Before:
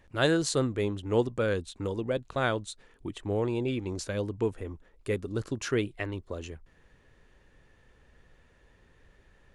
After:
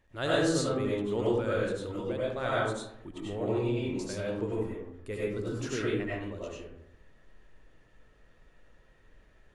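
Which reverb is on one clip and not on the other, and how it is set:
comb and all-pass reverb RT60 0.8 s, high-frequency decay 0.45×, pre-delay 55 ms, DRR −7 dB
level −8.5 dB

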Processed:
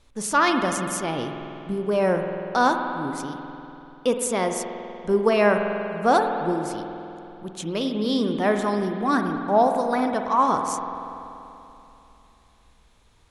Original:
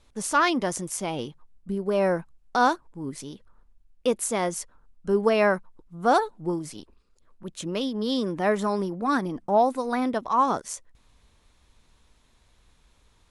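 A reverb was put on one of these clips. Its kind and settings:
spring reverb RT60 3 s, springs 48 ms, chirp 75 ms, DRR 4.5 dB
level +1.5 dB

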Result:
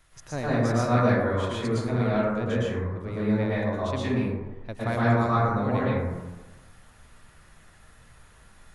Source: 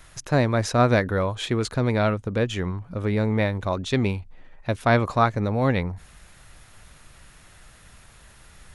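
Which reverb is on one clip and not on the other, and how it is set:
dense smooth reverb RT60 1.2 s, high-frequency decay 0.3×, pre-delay 100 ms, DRR −8.5 dB
level −12.5 dB

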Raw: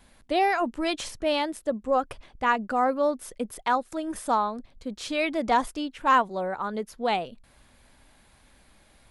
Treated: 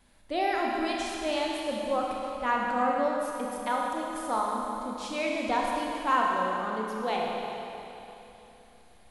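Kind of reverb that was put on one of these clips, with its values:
four-comb reverb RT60 3.2 s, combs from 25 ms, DRR −2 dB
level −6.5 dB

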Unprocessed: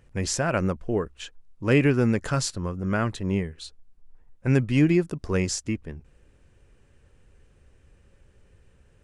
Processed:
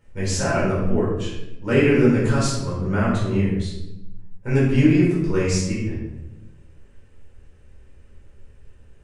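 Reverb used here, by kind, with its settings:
rectangular room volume 340 cubic metres, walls mixed, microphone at 4.5 metres
level −8 dB

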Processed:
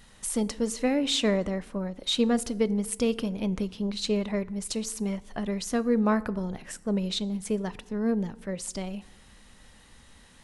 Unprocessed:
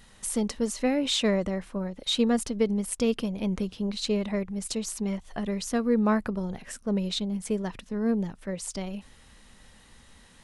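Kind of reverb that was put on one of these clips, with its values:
feedback delay network reverb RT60 1.1 s, low-frequency decay 1.25×, high-frequency decay 0.6×, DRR 17 dB

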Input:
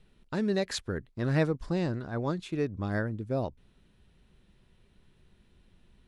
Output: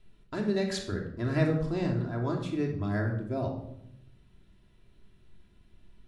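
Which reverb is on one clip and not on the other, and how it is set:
rectangular room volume 2,000 cubic metres, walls furnished, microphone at 3 metres
level −3.5 dB

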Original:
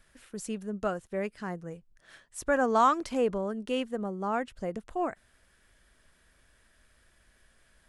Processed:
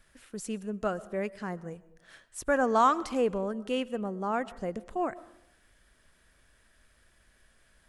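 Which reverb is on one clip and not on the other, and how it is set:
comb and all-pass reverb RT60 0.84 s, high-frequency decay 0.4×, pre-delay 80 ms, DRR 19 dB

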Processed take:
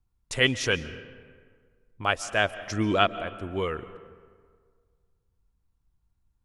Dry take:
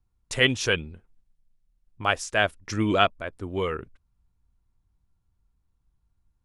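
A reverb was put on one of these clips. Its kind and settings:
comb and all-pass reverb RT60 1.8 s, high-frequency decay 0.55×, pre-delay 100 ms, DRR 15 dB
level −1.5 dB

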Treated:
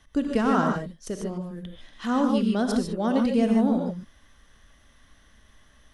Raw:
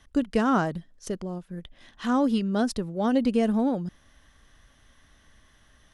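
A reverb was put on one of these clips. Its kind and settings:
reverb whose tail is shaped and stops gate 170 ms rising, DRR 2 dB
level −1 dB

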